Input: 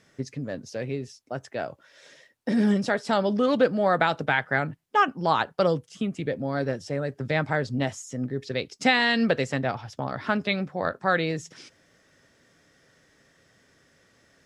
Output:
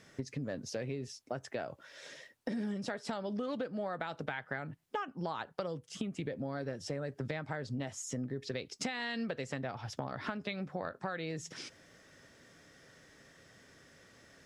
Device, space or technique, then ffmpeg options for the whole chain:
serial compression, peaks first: -af "acompressor=threshold=-30dB:ratio=6,acompressor=threshold=-40dB:ratio=2,volume=1.5dB"

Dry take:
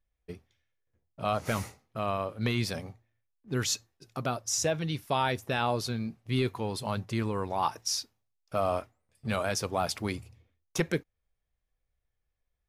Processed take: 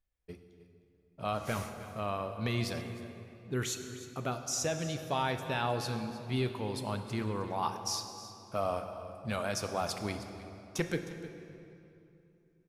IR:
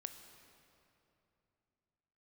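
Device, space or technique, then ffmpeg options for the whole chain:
cave: -filter_complex "[0:a]aecho=1:1:310:0.158[a];[1:a]atrim=start_sample=2205[b];[a][b]afir=irnorm=-1:irlink=0,asettb=1/sr,asplit=3[c][d][e];[c]atrim=end=2.814[f];[d]atrim=start=2.81:end=4.32,asetpts=PTS-STARTPTS,afade=t=in:d=0.004:c=qsin,afade=t=out:st=1.506:d=0.004:c=qsin,equalizer=f=400:t=o:w=0.33:g=4,equalizer=f=2k:t=o:w=0.33:g=3,equalizer=f=5k:t=o:w=0.33:g=-11[g];[e]atrim=start=4.316[h];[f][g]acrossfade=d=0.004:c1=hsin:c2=qsin[i];[i][h]acrossfade=d=0.004:c1=qsin:c2=hsin"

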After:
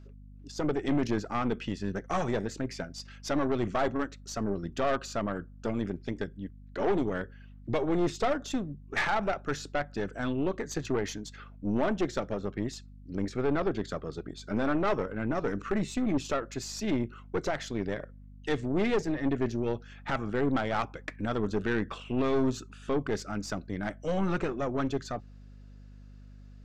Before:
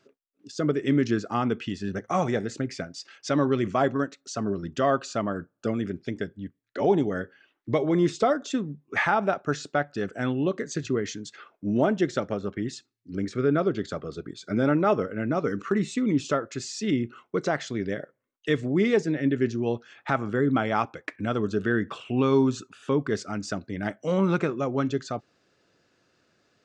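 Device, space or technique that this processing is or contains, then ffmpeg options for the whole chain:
valve amplifier with mains hum: -filter_complex "[0:a]asettb=1/sr,asplit=3[a][b][c];[a]atrim=end=10.694[d];[b]atrim=start=10.69:end=11.21,asetpts=PTS-STARTPTS,afade=t=in:d=0.004:c=qsin,afade=t=out:st=0.516:d=0.004:c=qsin,equalizer=f=940:t=o:w=0.78:g=11.5[e];[c]atrim=start=11.206[f];[d][e]acrossfade=d=0.004:c1=hsin:c2=qsin[g];[g][f]acrossfade=d=0.004:c1=qsin:c2=hsin,aeval=exprs='(tanh(12.6*val(0)+0.6)-tanh(0.6))/12.6':c=same,aeval=exprs='val(0)+0.00398*(sin(2*PI*50*n/s)+sin(2*PI*2*50*n/s)/2+sin(2*PI*3*50*n/s)/3+sin(2*PI*4*50*n/s)/4+sin(2*PI*5*50*n/s)/5)':c=same"

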